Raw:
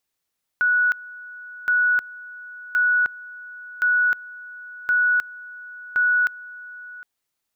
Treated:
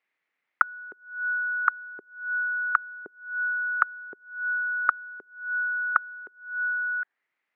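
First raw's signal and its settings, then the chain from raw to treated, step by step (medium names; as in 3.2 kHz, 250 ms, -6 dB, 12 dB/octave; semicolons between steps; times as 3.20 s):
two-level tone 1.47 kHz -15.5 dBFS, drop 20 dB, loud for 0.31 s, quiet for 0.76 s, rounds 6
high-pass 240 Hz 12 dB/octave; touch-sensitive low-pass 400–2100 Hz down, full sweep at -19.5 dBFS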